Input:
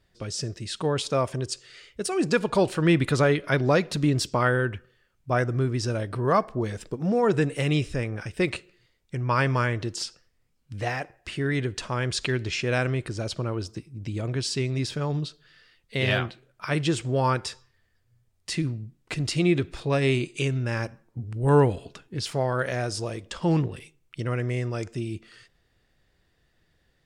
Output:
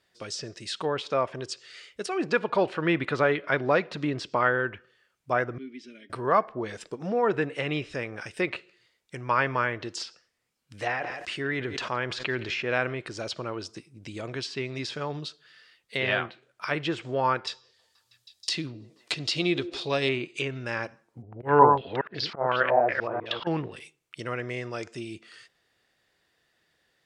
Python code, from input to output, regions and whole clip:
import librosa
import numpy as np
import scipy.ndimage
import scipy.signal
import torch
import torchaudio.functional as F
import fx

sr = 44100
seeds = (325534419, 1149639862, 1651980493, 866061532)

y = fx.chain(x, sr, fx.vowel_filter(vowel='i'),
    fx.peak_eq(hz=63.0, db=-14.5, octaves=1.6),
    fx.comb(ms=4.9, depth=0.59), at=(5.58, 6.1))
y = fx.chain(y, sr, fx.echo_single(ms=168, db=-22.5),
    fx.sustainer(db_per_s=44.0), at=(10.81, 12.93))
y = fx.chain(y, sr, fx.high_shelf_res(hz=2800.0, db=10.0, q=1.5),
    fx.echo_stepped(ms=160, hz=420.0, octaves=0.7, feedback_pct=70, wet_db=-11.0), at=(17.47, 20.09))
y = fx.chain(y, sr, fx.reverse_delay(ms=198, wet_db=-4),
    fx.auto_swell(attack_ms=115.0),
    fx.filter_held_lowpass(hz=5.4, low_hz=780.0, high_hz=4700.0), at=(21.22, 23.47))
y = fx.highpass(y, sr, hz=590.0, slope=6)
y = fx.env_lowpass_down(y, sr, base_hz=2600.0, full_db=-27.0)
y = y * librosa.db_to_amplitude(2.0)